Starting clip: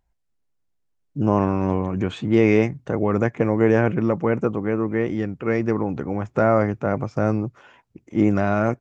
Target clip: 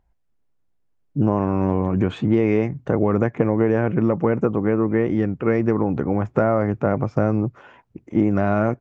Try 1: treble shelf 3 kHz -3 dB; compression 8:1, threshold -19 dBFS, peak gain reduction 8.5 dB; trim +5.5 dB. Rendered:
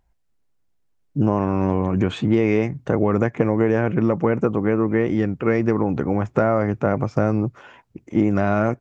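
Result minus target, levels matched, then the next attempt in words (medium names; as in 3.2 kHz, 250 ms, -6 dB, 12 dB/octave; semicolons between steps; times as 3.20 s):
8 kHz band +7.5 dB
treble shelf 3 kHz -12.5 dB; compression 8:1, threshold -19 dBFS, peak gain reduction 8 dB; trim +5.5 dB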